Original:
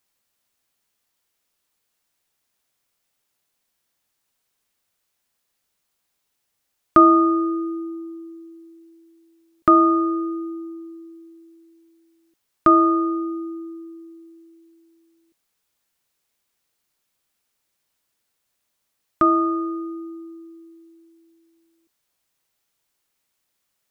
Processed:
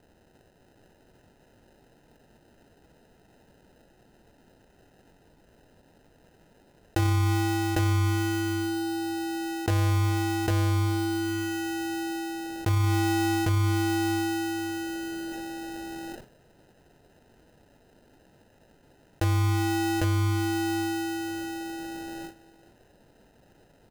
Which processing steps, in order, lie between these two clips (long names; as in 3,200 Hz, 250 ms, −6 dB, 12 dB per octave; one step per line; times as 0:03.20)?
phase shifter 0.15 Hz, delay 4.9 ms, feedback 46%
noise gate with hold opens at −55 dBFS
double-tracking delay 26 ms −6 dB
decimation without filtering 39×
parametric band 950 Hz +2.5 dB 0.42 octaves
single-tap delay 801 ms −4 dB
brickwall limiter −12.5 dBFS, peak gain reduction 9 dB
envelope flattener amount 70%
level −6.5 dB